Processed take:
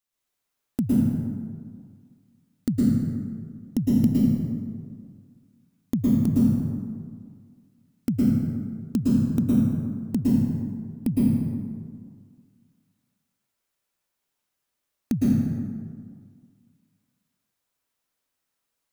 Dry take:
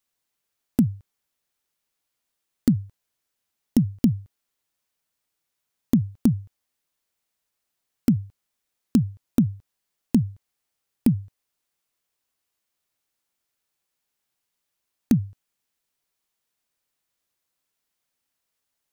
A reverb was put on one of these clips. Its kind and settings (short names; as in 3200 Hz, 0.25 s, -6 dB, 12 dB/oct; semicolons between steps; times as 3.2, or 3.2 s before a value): plate-style reverb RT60 1.9 s, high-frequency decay 0.5×, pre-delay 0.1 s, DRR -7 dB; gain -6.5 dB